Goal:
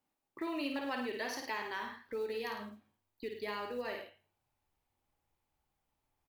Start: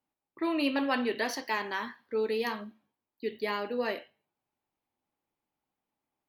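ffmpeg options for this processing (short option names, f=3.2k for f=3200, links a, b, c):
-af "aecho=1:1:53|105:0.531|0.282,acompressor=threshold=-44dB:ratio=2,acrusher=bits=8:mode=log:mix=0:aa=0.000001,asubboost=boost=8:cutoff=81,volume=1.5dB"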